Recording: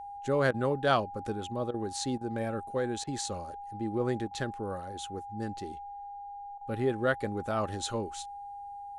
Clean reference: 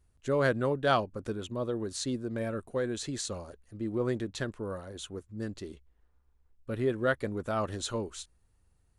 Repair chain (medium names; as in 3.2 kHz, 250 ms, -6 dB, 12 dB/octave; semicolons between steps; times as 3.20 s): band-stop 810 Hz, Q 30; interpolate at 0.51/1.71/2.18/3.04/4.28/6.58 s, 30 ms